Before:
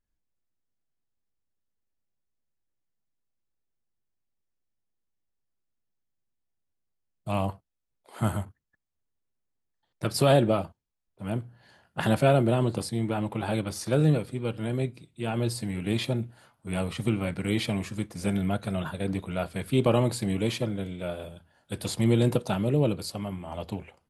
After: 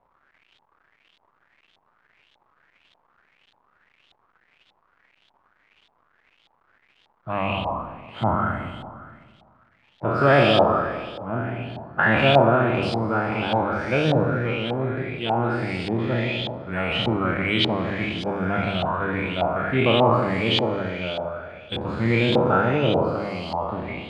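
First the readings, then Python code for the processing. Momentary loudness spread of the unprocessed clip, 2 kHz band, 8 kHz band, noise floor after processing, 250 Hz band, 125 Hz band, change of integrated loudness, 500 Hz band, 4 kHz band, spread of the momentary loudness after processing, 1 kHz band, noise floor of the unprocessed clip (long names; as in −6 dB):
13 LU, +13.0 dB, below −10 dB, −66 dBFS, +3.0 dB, +2.0 dB, +5.5 dB, +6.5 dB, +10.0 dB, 12 LU, +11.5 dB, −80 dBFS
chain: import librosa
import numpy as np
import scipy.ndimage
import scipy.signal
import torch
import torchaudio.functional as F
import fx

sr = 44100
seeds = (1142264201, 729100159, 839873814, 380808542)

p1 = fx.spec_trails(x, sr, decay_s=1.87)
p2 = fx.hum_notches(p1, sr, base_hz=50, count=4)
p3 = p2 + fx.echo_single(p2, sr, ms=166, db=-7.5, dry=0)
p4 = fx.dmg_crackle(p3, sr, seeds[0], per_s=520.0, level_db=-49.0)
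y = fx.filter_lfo_lowpass(p4, sr, shape='saw_up', hz=1.7, low_hz=800.0, high_hz=3600.0, q=4.8)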